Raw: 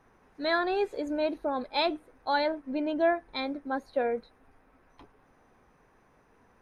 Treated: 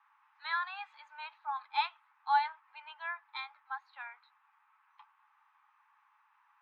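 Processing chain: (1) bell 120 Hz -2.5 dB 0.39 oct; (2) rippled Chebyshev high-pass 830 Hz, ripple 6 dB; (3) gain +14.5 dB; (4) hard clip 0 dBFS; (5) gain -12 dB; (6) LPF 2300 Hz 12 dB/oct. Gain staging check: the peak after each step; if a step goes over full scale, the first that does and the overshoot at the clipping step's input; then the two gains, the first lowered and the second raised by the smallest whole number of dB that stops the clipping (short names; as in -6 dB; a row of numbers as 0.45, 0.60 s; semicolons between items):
-14.5, -17.5, -3.0, -3.0, -15.0, -17.0 dBFS; no overload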